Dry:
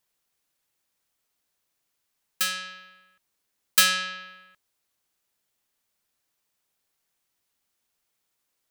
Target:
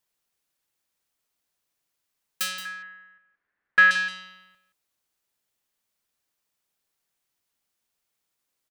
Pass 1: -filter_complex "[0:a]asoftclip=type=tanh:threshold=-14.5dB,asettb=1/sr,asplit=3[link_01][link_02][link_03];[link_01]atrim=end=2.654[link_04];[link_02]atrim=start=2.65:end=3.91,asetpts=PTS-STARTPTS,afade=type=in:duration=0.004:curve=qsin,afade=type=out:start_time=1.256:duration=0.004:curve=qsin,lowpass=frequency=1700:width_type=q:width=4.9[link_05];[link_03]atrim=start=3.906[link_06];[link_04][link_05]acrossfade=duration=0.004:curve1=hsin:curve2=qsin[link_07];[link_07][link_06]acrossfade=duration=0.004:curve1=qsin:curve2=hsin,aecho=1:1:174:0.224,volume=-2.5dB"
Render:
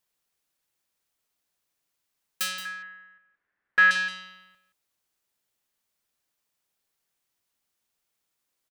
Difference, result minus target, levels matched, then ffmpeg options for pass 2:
soft clipping: distortion +15 dB
-filter_complex "[0:a]asoftclip=type=tanh:threshold=-4dB,asettb=1/sr,asplit=3[link_01][link_02][link_03];[link_01]atrim=end=2.654[link_04];[link_02]atrim=start=2.65:end=3.91,asetpts=PTS-STARTPTS,afade=type=in:duration=0.004:curve=qsin,afade=type=out:start_time=1.256:duration=0.004:curve=qsin,lowpass=frequency=1700:width_type=q:width=4.9[link_05];[link_03]atrim=start=3.906[link_06];[link_04][link_05]acrossfade=duration=0.004:curve1=hsin:curve2=qsin[link_07];[link_07][link_06]acrossfade=duration=0.004:curve1=qsin:curve2=hsin,aecho=1:1:174:0.224,volume=-2.5dB"

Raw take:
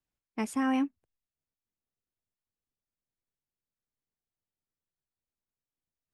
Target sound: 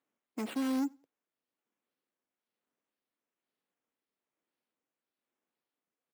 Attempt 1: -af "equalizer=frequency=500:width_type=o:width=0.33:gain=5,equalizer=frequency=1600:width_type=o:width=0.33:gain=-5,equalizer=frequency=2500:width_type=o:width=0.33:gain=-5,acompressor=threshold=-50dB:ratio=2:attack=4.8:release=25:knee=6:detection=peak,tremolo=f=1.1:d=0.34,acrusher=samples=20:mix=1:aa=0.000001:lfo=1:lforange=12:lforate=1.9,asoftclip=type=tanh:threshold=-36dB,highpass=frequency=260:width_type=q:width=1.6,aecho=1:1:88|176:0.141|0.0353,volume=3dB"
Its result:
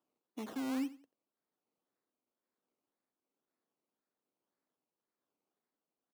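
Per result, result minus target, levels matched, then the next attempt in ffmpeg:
downward compressor: peak gain reduction +13 dB; echo-to-direct +10.5 dB; sample-and-hold swept by an LFO: distortion +8 dB
-af "equalizer=frequency=500:width_type=o:width=0.33:gain=5,equalizer=frequency=1600:width_type=o:width=0.33:gain=-5,equalizer=frequency=2500:width_type=o:width=0.33:gain=-5,tremolo=f=1.1:d=0.34,acrusher=samples=20:mix=1:aa=0.000001:lfo=1:lforange=12:lforate=1.9,asoftclip=type=tanh:threshold=-36dB,highpass=frequency=260:width_type=q:width=1.6,aecho=1:1:88|176:0.141|0.0353,volume=3dB"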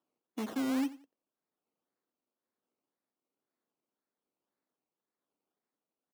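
echo-to-direct +10.5 dB; sample-and-hold swept by an LFO: distortion +8 dB
-af "equalizer=frequency=500:width_type=o:width=0.33:gain=5,equalizer=frequency=1600:width_type=o:width=0.33:gain=-5,equalizer=frequency=2500:width_type=o:width=0.33:gain=-5,tremolo=f=1.1:d=0.34,acrusher=samples=20:mix=1:aa=0.000001:lfo=1:lforange=12:lforate=1.9,asoftclip=type=tanh:threshold=-36dB,highpass=frequency=260:width_type=q:width=1.6,aecho=1:1:88|176:0.0422|0.0105,volume=3dB"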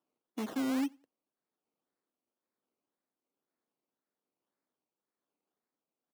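sample-and-hold swept by an LFO: distortion +8 dB
-af "equalizer=frequency=500:width_type=o:width=0.33:gain=5,equalizer=frequency=1600:width_type=o:width=0.33:gain=-5,equalizer=frequency=2500:width_type=o:width=0.33:gain=-5,tremolo=f=1.1:d=0.34,acrusher=samples=8:mix=1:aa=0.000001:lfo=1:lforange=4.8:lforate=1.9,asoftclip=type=tanh:threshold=-36dB,highpass=frequency=260:width_type=q:width=1.6,aecho=1:1:88|176:0.0422|0.0105,volume=3dB"

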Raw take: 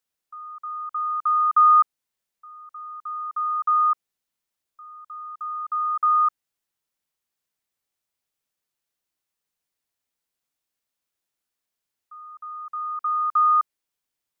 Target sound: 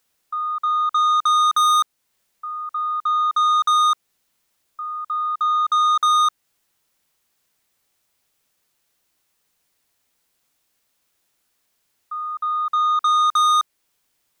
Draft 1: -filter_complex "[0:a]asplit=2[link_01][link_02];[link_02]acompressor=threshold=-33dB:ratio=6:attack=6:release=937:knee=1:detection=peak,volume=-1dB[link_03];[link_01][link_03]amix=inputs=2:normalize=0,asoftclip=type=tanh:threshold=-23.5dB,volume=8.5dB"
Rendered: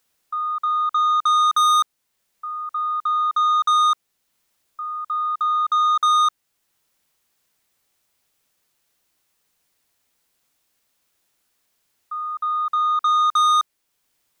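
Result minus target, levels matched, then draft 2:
downward compressor: peak gain reduction +8 dB
-filter_complex "[0:a]asplit=2[link_01][link_02];[link_02]acompressor=threshold=-23.5dB:ratio=6:attack=6:release=937:knee=1:detection=peak,volume=-1dB[link_03];[link_01][link_03]amix=inputs=2:normalize=0,asoftclip=type=tanh:threshold=-23.5dB,volume=8.5dB"

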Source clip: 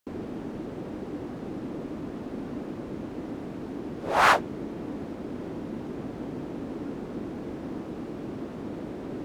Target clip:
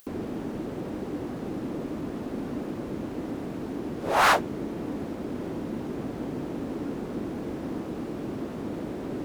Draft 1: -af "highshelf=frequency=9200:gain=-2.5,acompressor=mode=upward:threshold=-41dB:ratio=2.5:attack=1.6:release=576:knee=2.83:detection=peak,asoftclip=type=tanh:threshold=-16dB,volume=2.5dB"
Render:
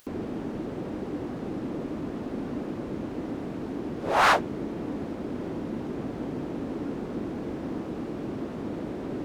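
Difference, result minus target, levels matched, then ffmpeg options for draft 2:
8,000 Hz band −3.5 dB
-af "highshelf=frequency=9200:gain=9,acompressor=mode=upward:threshold=-41dB:ratio=2.5:attack=1.6:release=576:knee=2.83:detection=peak,asoftclip=type=tanh:threshold=-16dB,volume=2.5dB"

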